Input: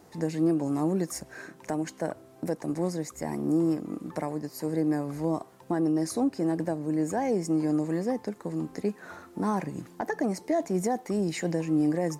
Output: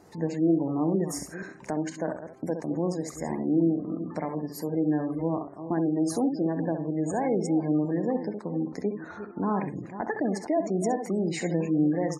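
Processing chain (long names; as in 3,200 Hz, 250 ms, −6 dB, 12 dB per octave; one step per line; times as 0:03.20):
delay that plays each chunk backwards 238 ms, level −11 dB
ambience of single reflections 31 ms −17.5 dB, 66 ms −7.5 dB
gate on every frequency bin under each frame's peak −30 dB strong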